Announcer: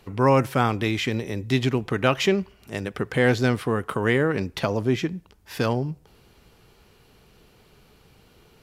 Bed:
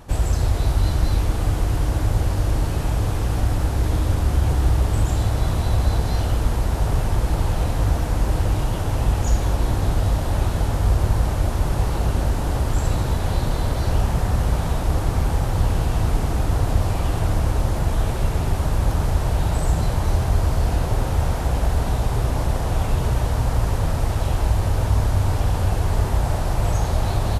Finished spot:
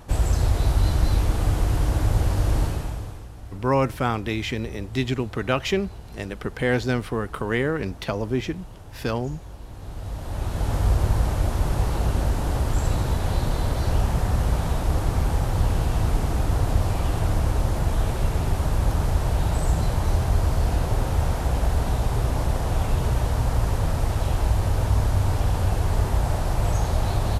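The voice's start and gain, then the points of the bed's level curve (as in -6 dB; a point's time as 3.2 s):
3.45 s, -2.5 dB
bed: 2.63 s -1 dB
3.32 s -19.5 dB
9.68 s -19.5 dB
10.74 s -2 dB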